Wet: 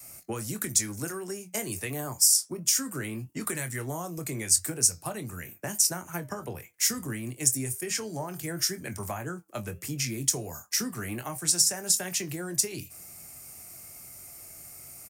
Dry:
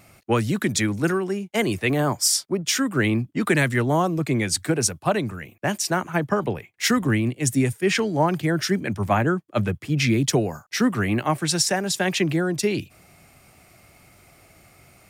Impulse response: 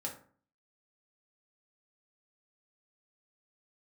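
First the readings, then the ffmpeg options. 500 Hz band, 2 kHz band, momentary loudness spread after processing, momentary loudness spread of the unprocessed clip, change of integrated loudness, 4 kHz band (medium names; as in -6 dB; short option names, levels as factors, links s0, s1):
-13.5 dB, -12.5 dB, 21 LU, 5 LU, -5.0 dB, -4.5 dB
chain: -filter_complex "[0:a]adynamicequalizer=threshold=0.0158:dfrequency=210:dqfactor=1.1:tfrequency=210:tqfactor=1.1:attack=5:release=100:ratio=0.375:range=2.5:mode=cutabove:tftype=bell,acrossover=split=120[s0][s1];[s0]alimiter=level_in=3.98:limit=0.0631:level=0:latency=1,volume=0.251[s2];[s1]acompressor=threshold=0.0355:ratio=6[s3];[s2][s3]amix=inputs=2:normalize=0,aexciter=amount=6.3:drive=5.6:freq=5200,flanger=delay=7.1:depth=2.1:regen=-82:speed=1.5:shape=sinusoidal,asplit=2[s4][s5];[s5]adelay=23,volume=0.299[s6];[s4][s6]amix=inputs=2:normalize=0"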